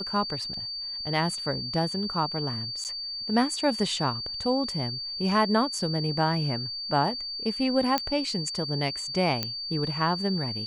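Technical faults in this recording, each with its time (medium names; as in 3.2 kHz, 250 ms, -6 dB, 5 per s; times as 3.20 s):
whine 4.6 kHz -32 dBFS
0.54 s: dropout 2.6 ms
2.84–2.85 s: dropout 8.7 ms
7.98 s: pop -10 dBFS
9.43 s: pop -12 dBFS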